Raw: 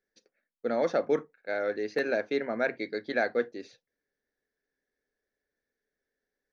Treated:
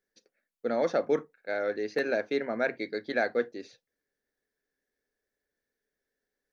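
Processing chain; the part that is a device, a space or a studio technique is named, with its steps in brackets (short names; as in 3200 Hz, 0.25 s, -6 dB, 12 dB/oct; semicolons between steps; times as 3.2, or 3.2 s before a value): exciter from parts (in parallel at -14 dB: HPF 3100 Hz 12 dB/oct + soft clip -38.5 dBFS, distortion -12 dB)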